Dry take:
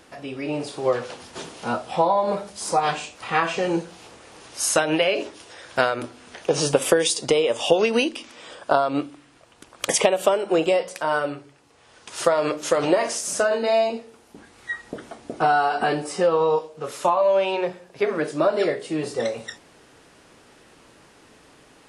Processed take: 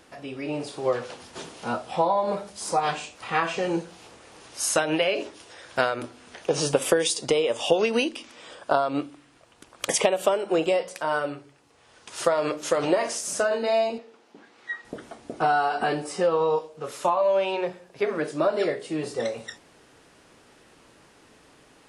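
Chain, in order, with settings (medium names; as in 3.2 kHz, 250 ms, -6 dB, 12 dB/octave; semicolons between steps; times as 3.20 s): 13.98–14.85 s: band-pass 240–5100 Hz; trim -3 dB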